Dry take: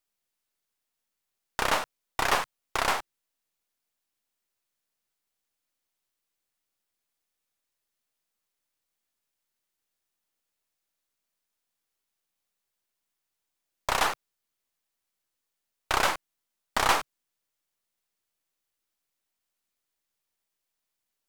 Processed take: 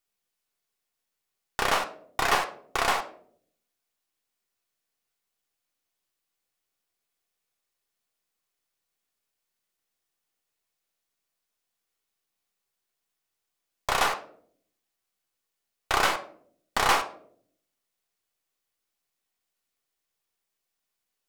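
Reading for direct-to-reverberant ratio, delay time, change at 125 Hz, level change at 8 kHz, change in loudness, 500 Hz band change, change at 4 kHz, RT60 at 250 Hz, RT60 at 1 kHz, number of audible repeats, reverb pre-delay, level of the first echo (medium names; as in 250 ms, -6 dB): 4.0 dB, no echo, +0.5 dB, +0.5 dB, +1.5 dB, +1.5 dB, +1.0 dB, 0.90 s, 0.50 s, no echo, 3 ms, no echo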